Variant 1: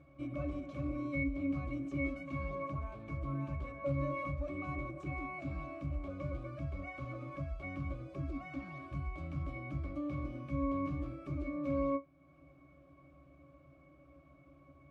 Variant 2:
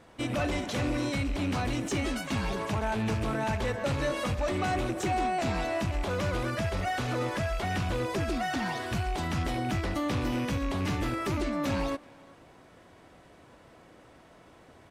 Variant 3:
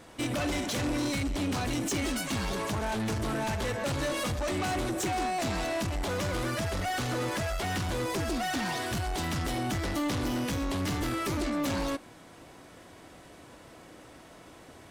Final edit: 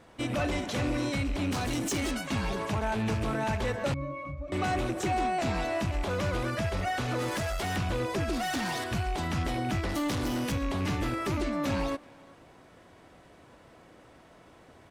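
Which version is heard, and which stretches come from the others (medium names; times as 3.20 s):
2
1.51–2.11 s: from 3
3.94–4.52 s: from 1
7.19–7.76 s: from 3
8.33–8.84 s: from 3
9.89–10.52 s: from 3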